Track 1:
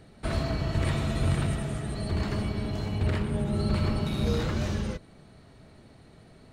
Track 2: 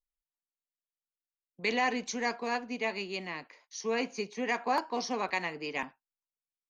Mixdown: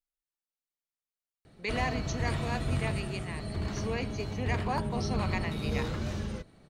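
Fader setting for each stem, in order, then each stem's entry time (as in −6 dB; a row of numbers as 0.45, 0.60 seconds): −5.0, −4.0 decibels; 1.45, 0.00 seconds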